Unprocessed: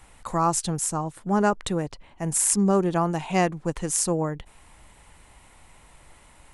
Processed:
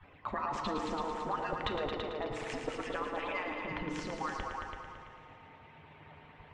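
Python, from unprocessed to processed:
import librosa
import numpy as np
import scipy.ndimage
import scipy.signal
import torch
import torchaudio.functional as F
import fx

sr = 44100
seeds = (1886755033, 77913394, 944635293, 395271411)

y = fx.hpss_only(x, sr, part='percussive')
y = scipy.signal.sosfilt(scipy.signal.butter(4, 3100.0, 'lowpass', fs=sr, output='sos'), y)
y = fx.hum_notches(y, sr, base_hz=60, count=5)
y = fx.over_compress(y, sr, threshold_db=-35.0, ratio=-1.0)
y = fx.echo_heads(y, sr, ms=111, heads='all three', feedback_pct=44, wet_db=-8)
y = fx.rev_fdn(y, sr, rt60_s=2.5, lf_ratio=0.75, hf_ratio=0.5, size_ms=20.0, drr_db=5.5)
y = y * 10.0 ** (-2.0 / 20.0)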